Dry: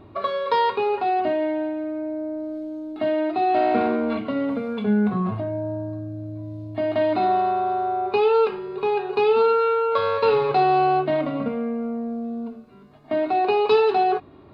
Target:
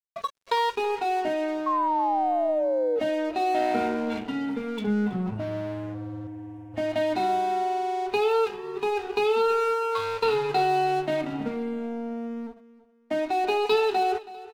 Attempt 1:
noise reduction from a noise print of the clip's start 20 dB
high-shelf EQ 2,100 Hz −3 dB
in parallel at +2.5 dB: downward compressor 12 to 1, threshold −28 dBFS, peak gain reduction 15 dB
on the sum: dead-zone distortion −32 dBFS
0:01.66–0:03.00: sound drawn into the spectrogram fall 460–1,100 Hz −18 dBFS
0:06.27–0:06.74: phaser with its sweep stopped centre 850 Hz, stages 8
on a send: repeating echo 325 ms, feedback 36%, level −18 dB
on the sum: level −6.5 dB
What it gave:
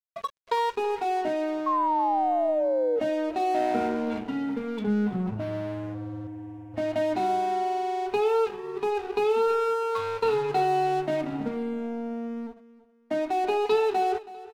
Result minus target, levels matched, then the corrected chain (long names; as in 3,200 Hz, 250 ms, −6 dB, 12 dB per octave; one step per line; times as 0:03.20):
4,000 Hz band −4.5 dB
noise reduction from a noise print of the clip's start 20 dB
high-shelf EQ 2,100 Hz +6.5 dB
in parallel at +2.5 dB: downward compressor 12 to 1, threshold −28 dBFS, peak gain reduction 16 dB
on the sum: dead-zone distortion −32 dBFS
0:01.66–0:03.00: sound drawn into the spectrogram fall 460–1,100 Hz −18 dBFS
0:06.27–0:06.74: phaser with its sweep stopped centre 850 Hz, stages 8
on a send: repeating echo 325 ms, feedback 36%, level −18 dB
on the sum: level −6.5 dB